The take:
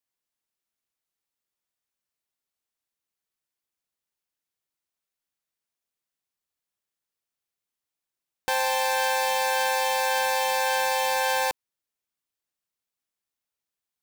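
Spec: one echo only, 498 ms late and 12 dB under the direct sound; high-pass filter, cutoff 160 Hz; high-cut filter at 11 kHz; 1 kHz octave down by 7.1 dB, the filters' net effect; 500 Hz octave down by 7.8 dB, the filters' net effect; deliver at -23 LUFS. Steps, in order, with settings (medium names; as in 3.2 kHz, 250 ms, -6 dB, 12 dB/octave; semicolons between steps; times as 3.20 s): high-pass 160 Hz; low-pass 11 kHz; peaking EQ 500 Hz -6.5 dB; peaking EQ 1 kHz -6.5 dB; delay 498 ms -12 dB; trim +4.5 dB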